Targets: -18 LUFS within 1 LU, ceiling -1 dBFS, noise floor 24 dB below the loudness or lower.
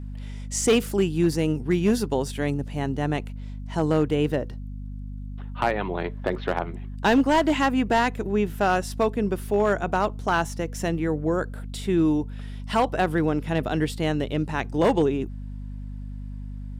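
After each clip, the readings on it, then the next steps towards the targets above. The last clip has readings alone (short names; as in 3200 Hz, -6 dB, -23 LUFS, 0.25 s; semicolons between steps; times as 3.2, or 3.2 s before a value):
clipped 0.6%; flat tops at -13.5 dBFS; hum 50 Hz; harmonics up to 250 Hz; hum level -32 dBFS; loudness -24.5 LUFS; peak -13.5 dBFS; loudness target -18.0 LUFS
-> clip repair -13.5 dBFS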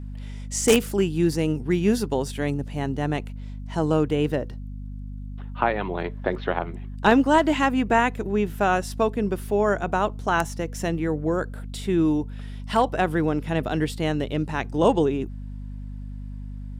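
clipped 0.0%; hum 50 Hz; harmonics up to 250 Hz; hum level -32 dBFS
-> de-hum 50 Hz, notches 5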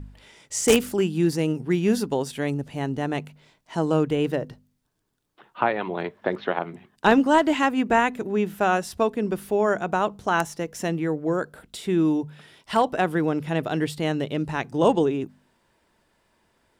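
hum none; loudness -24.0 LUFS; peak -4.0 dBFS; loudness target -18.0 LUFS
-> gain +6 dB; limiter -1 dBFS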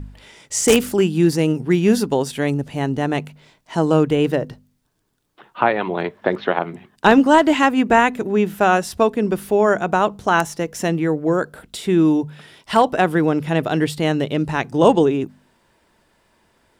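loudness -18.5 LUFS; peak -1.0 dBFS; noise floor -62 dBFS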